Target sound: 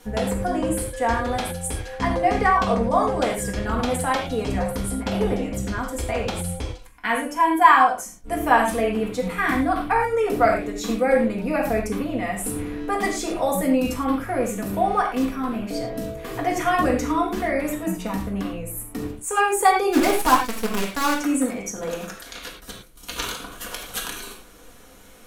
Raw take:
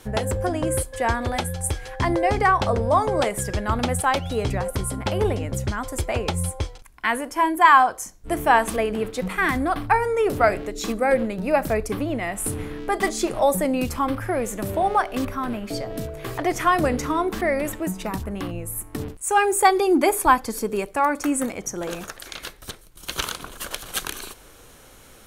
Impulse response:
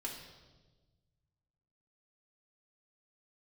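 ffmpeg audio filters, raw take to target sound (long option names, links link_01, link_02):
-filter_complex "[0:a]asplit=3[link_01][link_02][link_03];[link_01]afade=type=out:start_time=19.92:duration=0.02[link_04];[link_02]acrusher=bits=4:dc=4:mix=0:aa=0.000001,afade=type=in:start_time=19.92:duration=0.02,afade=type=out:start_time=21.19:duration=0.02[link_05];[link_03]afade=type=in:start_time=21.19:duration=0.02[link_06];[link_04][link_05][link_06]amix=inputs=3:normalize=0[link_07];[1:a]atrim=start_sample=2205,atrim=end_sample=3969,asetrate=33075,aresample=44100[link_08];[link_07][link_08]afir=irnorm=-1:irlink=0,volume=-1dB"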